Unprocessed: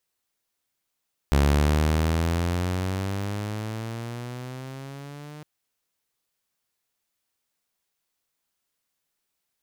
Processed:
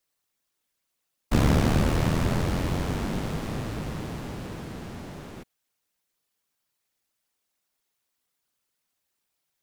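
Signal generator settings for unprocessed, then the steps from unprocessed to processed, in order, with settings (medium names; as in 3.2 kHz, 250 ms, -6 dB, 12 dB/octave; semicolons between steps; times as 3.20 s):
gliding synth tone saw, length 4.11 s, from 69.7 Hz, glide +13.5 st, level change -22.5 dB, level -14 dB
whisper effect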